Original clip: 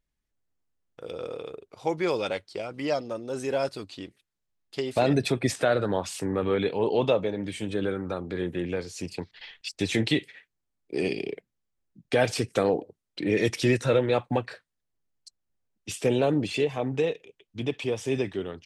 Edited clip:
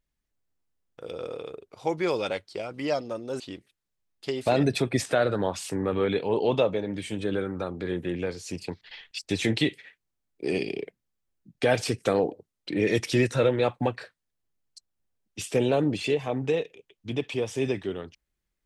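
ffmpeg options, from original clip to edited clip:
-filter_complex "[0:a]asplit=2[a][b];[a]atrim=end=3.402[c];[b]atrim=start=3.898[d];[c][d]acrossfade=d=0.004:c1=hsin:c2=hsin"

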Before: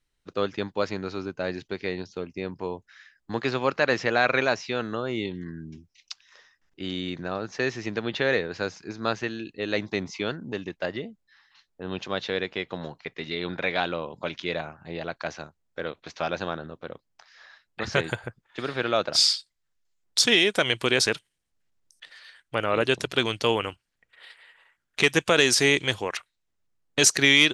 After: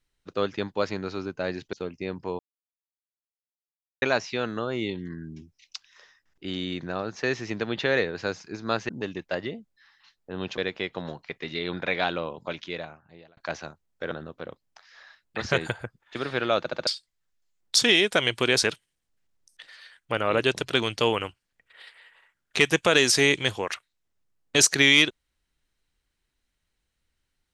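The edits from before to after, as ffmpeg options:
-filter_complex "[0:a]asplit=12[a][b][c][d][e][f][g][h][i][j][k][l];[a]atrim=end=1.732[m];[b]atrim=start=2.088:end=2.75,asetpts=PTS-STARTPTS,afade=t=out:st=0.658:d=0.004:c=hsin[n];[c]atrim=start=2.75:end=4.38,asetpts=PTS-STARTPTS,volume=0[o];[d]atrim=start=4.38:end=9.252,asetpts=PTS-STARTPTS,afade=t=in:d=0.004:c=hsin[p];[e]atrim=start=10.398:end=12.092[q];[f]atrim=start=12.338:end=15.13,asetpts=PTS-STARTPTS,afade=t=out:st=1.722:d=1.07[r];[g]atrim=start=15.13:end=15.872,asetpts=PTS-STARTPTS,afade=t=in:d=0.004:c=hsin[s];[h]atrim=start=16.538:end=19.092[t];[i]atrim=start=19.018:end=19.092[u];[j]atrim=start=19.018:end=19.092[v];[k]atrim=start=19.018:end=19.092[w];[l]atrim=start=19.298[x];[n][o][p]concat=n=3:v=0:a=1[y];[m][y]acrossfade=d=0.004:c1=hsin:c2=hsin[z];[z][q]acrossfade=d=0.004:c1=hsin:c2=hsin[aa];[r][s]concat=n=2:v=0:a=1[ab];[aa][ab]acrossfade=d=0.004:c1=hsin:c2=hsin[ac];[ac][t]acrossfade=d=0.004:c1=hsin:c2=hsin[ad];[ad][u]acrossfade=d=0.004:c1=hsin:c2=hsin[ae];[ae][v]acrossfade=d=0.004:c1=hsin:c2=hsin[af];[af][w]acrossfade=d=0.004:c1=hsin:c2=hsin[ag];[ag][x]acrossfade=d=0.004:c1=hsin:c2=hsin"

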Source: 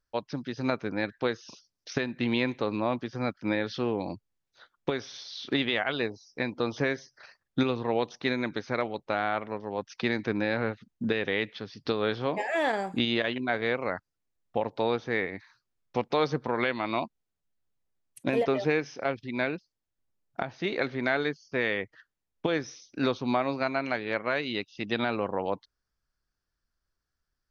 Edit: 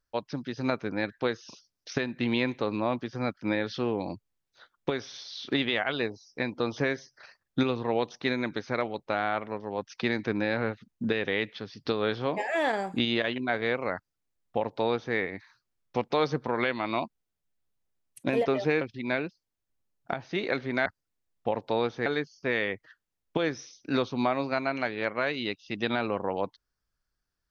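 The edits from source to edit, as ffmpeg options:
-filter_complex "[0:a]asplit=4[a][b][c][d];[a]atrim=end=18.812[e];[b]atrim=start=19.098:end=21.152[f];[c]atrim=start=13.948:end=15.152[g];[d]atrim=start=21.148[h];[e][f]acrossfade=d=0.004:c1=hsin:c2=hsin[i];[i][g]acrossfade=d=0.004:c1=hsin:c2=hsin[j];[j][h]acrossfade=d=0.004:c1=hsin:c2=hsin"

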